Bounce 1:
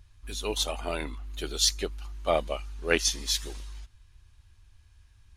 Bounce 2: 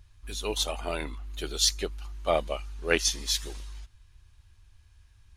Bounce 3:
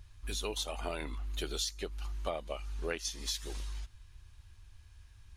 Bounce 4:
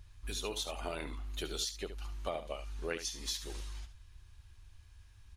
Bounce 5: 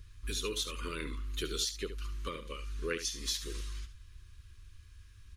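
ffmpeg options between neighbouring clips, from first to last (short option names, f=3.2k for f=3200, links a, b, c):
-af "equalizer=f=260:w=3.9:g=-2"
-af "acompressor=threshold=-34dB:ratio=16,volume=1.5dB"
-af "aecho=1:1:72:0.282,volume=-1.5dB"
-af "asuperstop=centerf=730:order=8:qfactor=1.4,volume=3dB"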